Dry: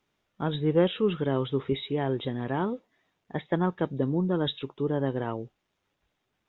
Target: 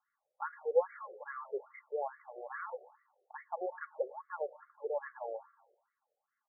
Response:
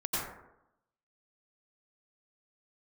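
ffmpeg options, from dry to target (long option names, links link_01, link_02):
-filter_complex "[0:a]aecho=1:1:3.6:0.46,asplit=2[link_01][link_02];[1:a]atrim=start_sample=2205,asetrate=37926,aresample=44100[link_03];[link_02][link_03]afir=irnorm=-1:irlink=0,volume=-26dB[link_04];[link_01][link_04]amix=inputs=2:normalize=0,afftfilt=real='re*between(b*sr/1024,530*pow(1600/530,0.5+0.5*sin(2*PI*2.4*pts/sr))/1.41,530*pow(1600/530,0.5+0.5*sin(2*PI*2.4*pts/sr))*1.41)':imag='im*between(b*sr/1024,530*pow(1600/530,0.5+0.5*sin(2*PI*2.4*pts/sr))/1.41,530*pow(1600/530,0.5+0.5*sin(2*PI*2.4*pts/sr))*1.41)':win_size=1024:overlap=0.75,volume=-3dB"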